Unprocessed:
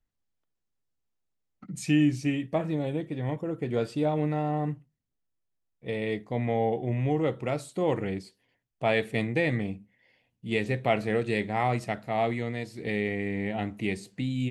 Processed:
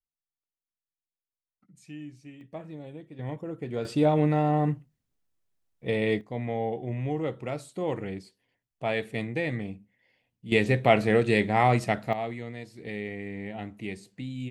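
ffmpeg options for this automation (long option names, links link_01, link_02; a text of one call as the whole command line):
ffmpeg -i in.wav -af "asetnsamples=nb_out_samples=441:pad=0,asendcmd='2.41 volume volume -12dB;3.19 volume volume -4dB;3.85 volume volume 4.5dB;6.21 volume volume -3.5dB;10.52 volume volume 5dB;12.13 volume volume -6dB',volume=-19dB" out.wav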